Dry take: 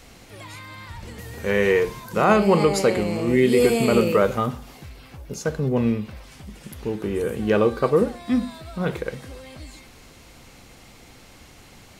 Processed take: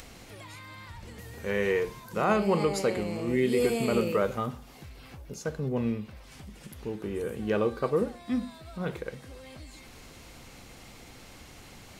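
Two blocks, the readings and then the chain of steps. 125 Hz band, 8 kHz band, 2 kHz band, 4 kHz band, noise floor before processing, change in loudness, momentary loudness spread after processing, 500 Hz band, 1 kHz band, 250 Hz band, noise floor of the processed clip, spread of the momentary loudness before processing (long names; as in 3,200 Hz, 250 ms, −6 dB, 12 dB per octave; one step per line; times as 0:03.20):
−8.0 dB, −7.5 dB, −8.0 dB, −7.5 dB, −48 dBFS, −8.0 dB, 23 LU, −8.0 dB, −8.0 dB, −8.0 dB, −50 dBFS, 21 LU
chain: upward compression, threshold −32 dBFS
level −8 dB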